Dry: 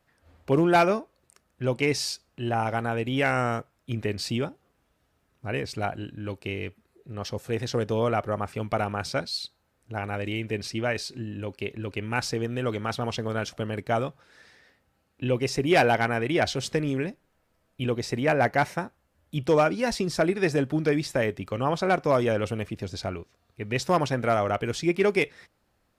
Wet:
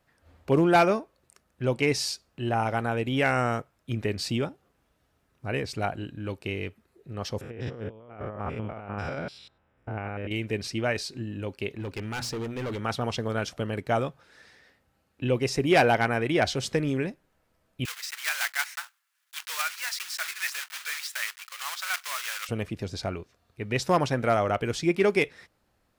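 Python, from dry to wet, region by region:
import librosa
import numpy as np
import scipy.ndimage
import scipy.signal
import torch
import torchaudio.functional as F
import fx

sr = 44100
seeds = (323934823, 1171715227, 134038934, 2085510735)

y = fx.chain(x, sr, fx.spec_steps(hold_ms=100),
    fx.over_compress(threshold_db=-34.0, ratio=-0.5),
    fx.savgol(points=25), at=(7.41, 10.31))
y = fx.chain(y, sr, fx.hum_notches(base_hz=60, count=4),
    fx.overload_stage(gain_db=29.5), at=(11.7, 12.8))
y = fx.chain(y, sr, fx.block_float(bits=3),
    fx.highpass(hz=1300.0, slope=24), at=(17.85, 22.49))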